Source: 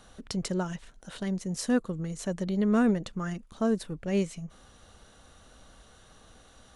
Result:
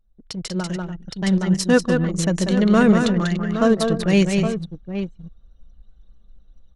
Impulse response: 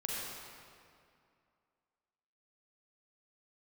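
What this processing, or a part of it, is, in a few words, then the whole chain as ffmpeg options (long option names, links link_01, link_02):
voice memo with heavy noise removal: -filter_complex "[0:a]asettb=1/sr,asplit=3[link_01][link_02][link_03];[link_01]atrim=end=1.124[link_04];[link_02]atrim=start=1.12:end=1.67,asetpts=PTS-STARTPTS,afade=type=in:duration=0.004:curve=qsin,afade=type=out:start_time=0.546:duration=0.004:curve=qsin,agate=range=-9dB:threshold=-33dB:ratio=16:detection=peak[link_05];[link_03]atrim=start=1.666[link_06];[link_04][link_05]acrossfade=duration=0.004:curve1=hsin:curve2=qsin[link_07];[link_07][link_06]acrossfade=duration=0.004:curve1=qsin:curve2=hsin,equalizer=frequency=3700:width_type=o:width=2:gain=6,aecho=1:1:6.2:0.33,aecho=1:1:150|192|291|817:0.1|0.562|0.2|0.316,anlmdn=1.58,dynaudnorm=framelen=270:gausssize=7:maxgain=14dB,volume=-2dB"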